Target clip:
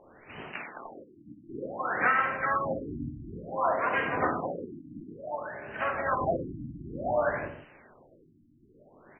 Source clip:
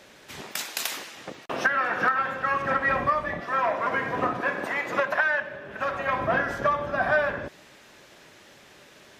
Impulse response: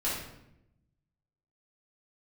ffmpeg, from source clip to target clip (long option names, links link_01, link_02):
-filter_complex "[0:a]asplit=4[link_01][link_02][link_03][link_04];[link_02]asetrate=35002,aresample=44100,atempo=1.25992,volume=-17dB[link_05];[link_03]asetrate=52444,aresample=44100,atempo=0.840896,volume=-7dB[link_06];[link_04]asetrate=66075,aresample=44100,atempo=0.66742,volume=-9dB[link_07];[link_01][link_05][link_06][link_07]amix=inputs=4:normalize=0,asplit=2[link_08][link_09];[1:a]atrim=start_sample=2205,afade=type=out:start_time=0.22:duration=0.01,atrim=end_sample=10143[link_10];[link_09][link_10]afir=irnorm=-1:irlink=0,volume=-10dB[link_11];[link_08][link_11]amix=inputs=2:normalize=0,afftfilt=real='re*lt(b*sr/1024,320*pow(3200/320,0.5+0.5*sin(2*PI*0.56*pts/sr)))':imag='im*lt(b*sr/1024,320*pow(3200/320,0.5+0.5*sin(2*PI*0.56*pts/sr)))':win_size=1024:overlap=0.75,volume=-5.5dB"